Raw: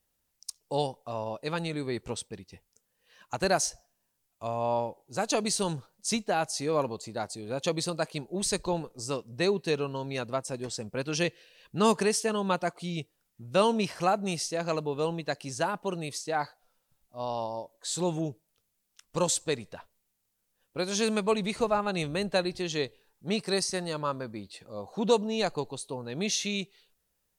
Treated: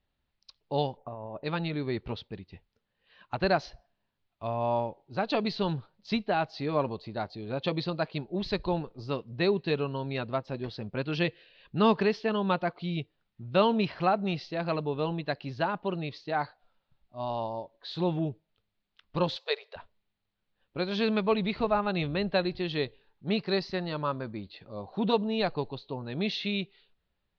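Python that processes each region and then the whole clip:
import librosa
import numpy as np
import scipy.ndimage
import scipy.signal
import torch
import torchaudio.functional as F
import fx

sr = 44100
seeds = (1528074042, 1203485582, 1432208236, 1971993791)

y = fx.chain(x, sr, fx.lowpass(hz=1300.0, slope=12),
    fx.over_compress(threshold_db=-40.0, ratio=-1.0), at=(0.97, 1.44))
y = fx.chain(y, sr, fx.brickwall_highpass(low_hz=390.0),
    fx.high_shelf(hz=4600.0, db=11.5), at=(19.36, 19.76))
y = scipy.signal.sosfilt(scipy.signal.butter(8, 4300.0, 'lowpass', fs=sr, output='sos'), y)
y = fx.low_shelf(y, sr, hz=160.0, db=5.0)
y = fx.notch(y, sr, hz=490.0, q=12.0)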